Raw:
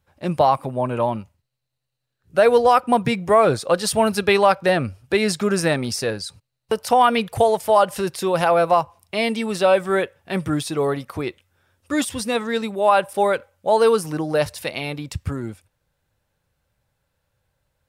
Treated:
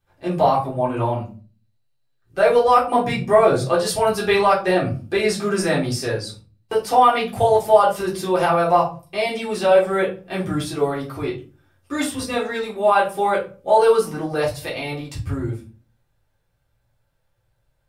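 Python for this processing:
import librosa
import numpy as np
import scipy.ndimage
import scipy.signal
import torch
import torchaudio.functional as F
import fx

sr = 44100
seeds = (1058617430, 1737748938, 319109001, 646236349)

y = fx.room_shoebox(x, sr, seeds[0], volume_m3=190.0, walls='furnished', distance_m=3.7)
y = y * librosa.db_to_amplitude(-8.0)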